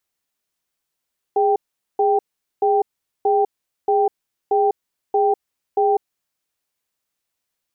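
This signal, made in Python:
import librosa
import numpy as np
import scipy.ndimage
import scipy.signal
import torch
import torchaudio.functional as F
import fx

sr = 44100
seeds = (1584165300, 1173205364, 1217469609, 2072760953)

y = fx.cadence(sr, length_s=5.0, low_hz=412.0, high_hz=785.0, on_s=0.2, off_s=0.43, level_db=-16.5)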